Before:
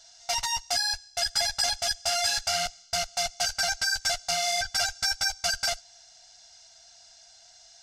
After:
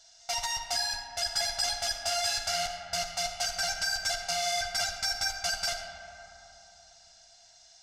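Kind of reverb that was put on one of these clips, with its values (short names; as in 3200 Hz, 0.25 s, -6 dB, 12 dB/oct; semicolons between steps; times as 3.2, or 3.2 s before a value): digital reverb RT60 3.4 s, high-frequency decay 0.35×, pre-delay 15 ms, DRR 4 dB; gain -4 dB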